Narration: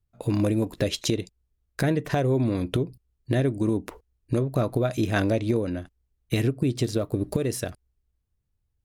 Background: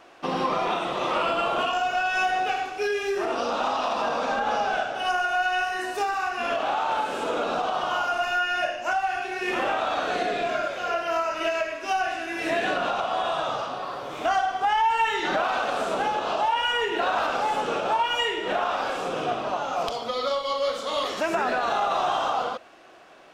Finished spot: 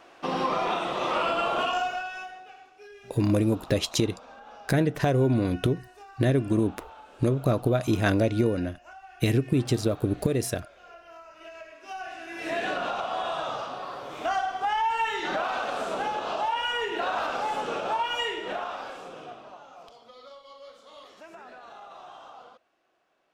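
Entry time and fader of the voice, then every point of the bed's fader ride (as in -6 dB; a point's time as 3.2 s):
2.90 s, +0.5 dB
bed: 1.8 s -1.5 dB
2.44 s -22 dB
11.27 s -22 dB
12.59 s -4 dB
18.32 s -4 dB
19.81 s -21.5 dB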